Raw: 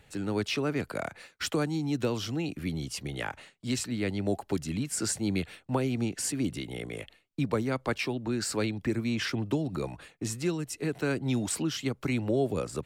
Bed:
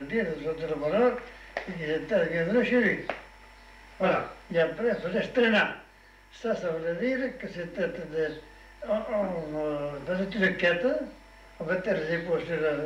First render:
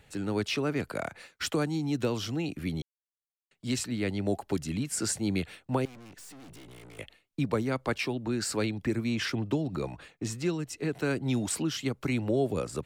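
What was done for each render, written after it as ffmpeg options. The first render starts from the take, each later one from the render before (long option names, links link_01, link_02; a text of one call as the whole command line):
ffmpeg -i in.wav -filter_complex "[0:a]asettb=1/sr,asplit=3[link_01][link_02][link_03];[link_01]atrim=end=5.854[link_04];[link_02]atrim=start=5.85:end=6.99,asetpts=PTS-STARTPTS,afade=type=in:duration=0.004:curve=qsin,afade=type=out:start_time=1.136:duration=0.004:curve=qsin,aeval=exprs='(tanh(251*val(0)+0.45)-tanh(0.45))/251':channel_layout=same[link_05];[link_03]atrim=start=6.986[link_06];[link_04][link_05]acrossfade=duration=0.004:curve1=hsin:curve2=qsin[link_07];[link_07][link_06]acrossfade=duration=0.004:curve1=qsin:curve2=hsin,asettb=1/sr,asplit=3[link_08][link_09][link_10];[link_08]atrim=end=9.394[link_11];[link_09]atrim=start=9.39:end=10.93,asetpts=PTS-STARTPTS,afade=type=in:duration=0.004:curve=qsin,afade=type=out:start_time=1.536:duration=0.004:curve=qsin,equalizer=frequency=11000:width=1.3:gain=-8.5[link_12];[link_10]atrim=start=10.926[link_13];[link_11][link_12]acrossfade=duration=0.004:curve1=hsin:curve2=qsin[link_14];[link_14][link_13]acrossfade=duration=0.004:curve1=qsin:curve2=hsin,asplit=3[link_15][link_16][link_17];[link_15]atrim=end=2.82,asetpts=PTS-STARTPTS,afade=type=out:start_time=2.816:duration=0.004:curve=hsin[link_18];[link_16]atrim=start=2.82:end=3.51,asetpts=PTS-STARTPTS,volume=0[link_19];[link_17]atrim=start=3.51,asetpts=PTS-STARTPTS,afade=type=in:duration=0.004:curve=hsin[link_20];[link_18][link_19][link_20]concat=n=3:v=0:a=1" out.wav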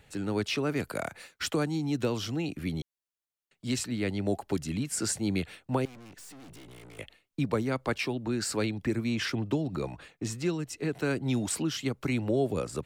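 ffmpeg -i in.wav -filter_complex "[0:a]asettb=1/sr,asplit=3[link_01][link_02][link_03];[link_01]atrim=end=0.694[link_04];[link_02]atrim=start=0.69:end=1.34,asetpts=PTS-STARTPTS,afade=type=in:duration=0.004:curve=qsin,afade=type=out:start_time=0.646:duration=0.004:curve=qsin,highshelf=frequency=8100:gain=9.5[link_05];[link_03]atrim=start=1.336[link_06];[link_04][link_05]acrossfade=duration=0.004:curve1=hsin:curve2=qsin[link_07];[link_07][link_06]acrossfade=duration=0.004:curve1=qsin:curve2=hsin" out.wav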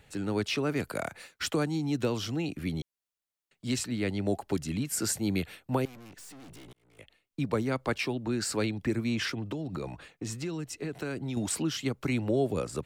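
ffmpeg -i in.wav -filter_complex "[0:a]asettb=1/sr,asplit=3[link_01][link_02][link_03];[link_01]atrim=end=4.894[link_04];[link_02]atrim=start=4.89:end=6.1,asetpts=PTS-STARTPTS,afade=type=in:duration=0.004:curve=qsin,afade=type=out:start_time=1.206:duration=0.004:curve=qsin,equalizer=frequency=12000:width=6.6:gain=14[link_05];[link_03]atrim=start=6.096[link_06];[link_04][link_05]acrossfade=duration=0.004:curve1=hsin:curve2=qsin[link_07];[link_07][link_06]acrossfade=duration=0.004:curve1=qsin:curve2=hsin,asettb=1/sr,asplit=3[link_08][link_09][link_10];[link_08]atrim=end=9.334[link_11];[link_09]atrim=start=9.33:end=11.37,asetpts=PTS-STARTPTS,afade=type=in:duration=0.004:curve=qsin,afade=type=out:start_time=2.036:duration=0.004:curve=qsin,acompressor=threshold=-30dB:ratio=6:attack=3.2:release=140:knee=1:detection=peak[link_12];[link_10]atrim=start=11.366[link_13];[link_11][link_12]acrossfade=duration=0.004:curve1=hsin:curve2=qsin[link_14];[link_14][link_13]acrossfade=duration=0.004:curve1=qsin:curve2=hsin,asplit=2[link_15][link_16];[link_15]atrim=end=6.73,asetpts=PTS-STARTPTS,afade=type=out:start_time=6.726:duration=0.004:curve=hsin[link_17];[link_16]atrim=start=6.73,asetpts=PTS-STARTPTS,afade=type=in:duration=0.86[link_18];[link_17][link_18]concat=n=2:v=0:a=1" out.wav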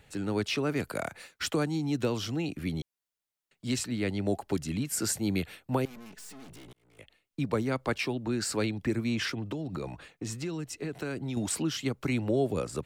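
ffmpeg -i in.wav -filter_complex "[0:a]asettb=1/sr,asplit=3[link_01][link_02][link_03];[link_01]atrim=end=5.904[link_04];[link_02]atrim=start=5.9:end=6.47,asetpts=PTS-STARTPTS,afade=type=in:duration=0.004:curve=qsin,afade=type=out:start_time=0.566:duration=0.004:curve=qsin,aecho=1:1:4.7:0.65,atrim=end_sample=25137[link_05];[link_03]atrim=start=6.466[link_06];[link_04][link_05]acrossfade=duration=0.004:curve1=hsin:curve2=qsin[link_07];[link_07][link_06]acrossfade=duration=0.004:curve1=qsin:curve2=hsin" out.wav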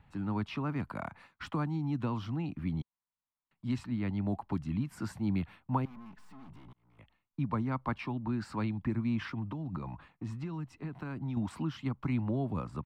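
ffmpeg -i in.wav -af "firequalizer=gain_entry='entry(220,0);entry(440,-15);entry(980,4);entry(1500,-7);entry(6800,-25)':delay=0.05:min_phase=1" out.wav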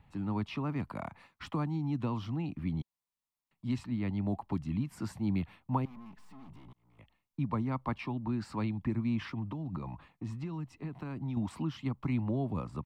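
ffmpeg -i in.wav -af "equalizer=frequency=1500:width_type=o:width=0.36:gain=-6.5" out.wav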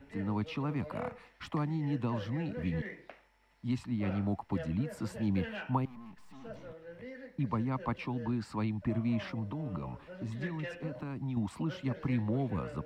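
ffmpeg -i in.wav -i bed.wav -filter_complex "[1:a]volume=-18.5dB[link_01];[0:a][link_01]amix=inputs=2:normalize=0" out.wav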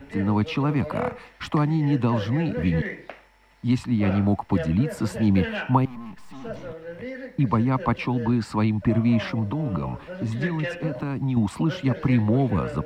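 ffmpeg -i in.wav -af "volume=11.5dB" out.wav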